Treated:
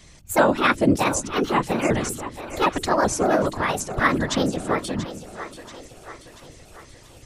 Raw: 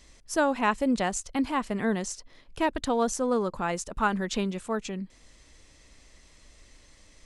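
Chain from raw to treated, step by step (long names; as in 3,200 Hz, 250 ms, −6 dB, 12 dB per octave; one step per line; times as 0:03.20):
pitch shifter gated in a rhythm +5 semitones, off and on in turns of 190 ms
random phases in short frames
echo with a time of its own for lows and highs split 310 Hz, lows 184 ms, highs 684 ms, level −12.5 dB
level +6.5 dB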